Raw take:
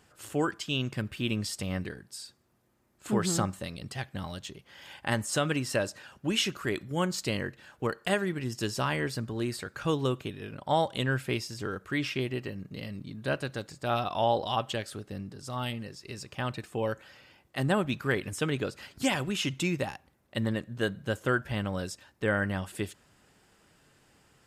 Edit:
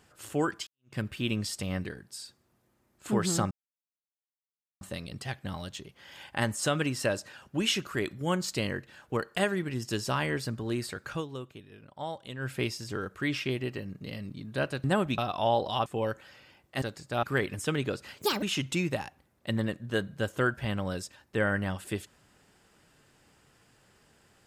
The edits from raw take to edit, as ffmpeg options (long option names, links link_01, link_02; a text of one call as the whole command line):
ffmpeg -i in.wav -filter_complex "[0:a]asplit=12[link_01][link_02][link_03][link_04][link_05][link_06][link_07][link_08][link_09][link_10][link_11][link_12];[link_01]atrim=end=0.67,asetpts=PTS-STARTPTS,afade=type=out:start_time=0.666:duration=0.004:curve=hsin[link_13];[link_02]atrim=start=0.67:end=3.51,asetpts=PTS-STARTPTS,afade=type=in:duration=0.28:curve=exp,afade=type=out:start_time=2.836:duration=0.004:curve=hsin,apad=pad_dur=1.3[link_14];[link_03]atrim=start=3.51:end=9.94,asetpts=PTS-STARTPTS,afade=type=in:duration=0.004:curve=hsin,afade=type=out:start_time=6.29:duration=0.14:silence=0.281838[link_15];[link_04]atrim=start=9.94:end=11.09,asetpts=PTS-STARTPTS,volume=-11dB[link_16];[link_05]atrim=start=11.09:end=13.542,asetpts=PTS-STARTPTS,afade=type=in:duration=0.14:silence=0.281838[link_17];[link_06]atrim=start=17.628:end=17.972[link_18];[link_07]atrim=start=13.948:end=14.632[link_19];[link_08]atrim=start=16.668:end=17.632[link_20];[link_09]atrim=start=13.538:end=13.952[link_21];[link_10]atrim=start=17.968:end=18.924[link_22];[link_11]atrim=start=18.92:end=19.3,asetpts=PTS-STARTPTS,asetrate=68796,aresample=44100,atrim=end_sample=10742,asetpts=PTS-STARTPTS[link_23];[link_12]atrim=start=19.296[link_24];[link_13][link_14][link_15][link_16][link_17]concat=n=5:v=0:a=1[link_25];[link_25][link_18]acrossfade=duration=0.004:curve1=hsin:curve2=hsin[link_26];[link_26][link_19]acrossfade=duration=0.004:curve1=hsin:curve2=hsin[link_27];[link_27][link_20]acrossfade=duration=0.004:curve1=hsin:curve2=hsin[link_28];[link_28][link_21]acrossfade=duration=0.004:curve1=hsin:curve2=hsin[link_29];[link_29][link_22]acrossfade=duration=0.004:curve1=hsin:curve2=hsin[link_30];[link_30][link_23]acrossfade=duration=0.004:curve1=hsin:curve2=hsin[link_31];[link_31][link_24]acrossfade=duration=0.004:curve1=hsin:curve2=hsin" out.wav